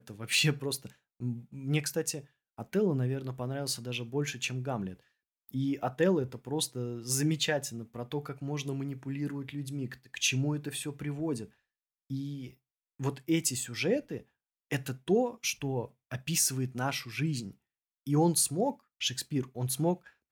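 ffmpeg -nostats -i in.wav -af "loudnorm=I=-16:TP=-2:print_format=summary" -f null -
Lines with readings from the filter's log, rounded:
Input Integrated:    -32.0 LUFS
Input True Peak:     -14.7 dBTP
Input LRA:             3.7 LU
Input Threshold:     -42.5 LUFS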